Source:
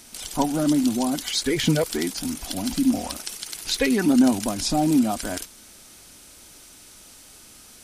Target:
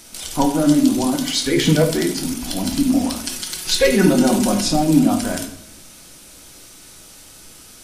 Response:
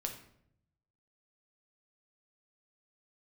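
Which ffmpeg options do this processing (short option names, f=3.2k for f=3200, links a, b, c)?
-filter_complex "[0:a]asettb=1/sr,asplit=3[a][b][c];[a]atrim=end=3.234[d];[b]atrim=start=3.23:end=4.61,asetpts=PTS-STARTPTS,afade=t=in:d=0.004:c=qsin,afade=t=out:st=1.376:d=0.004:c=qsin,aecho=1:1:5.5:0.85,atrim=end_sample=60858[e];[c]atrim=start=4.606[f];[d][e]acrossfade=d=0.004:c1=hsin:c2=qsin[g];[g][f]acrossfade=d=0.004:c1=qsin:c2=hsin[h];[1:a]atrim=start_sample=2205[i];[h][i]afir=irnorm=-1:irlink=0,volume=5dB"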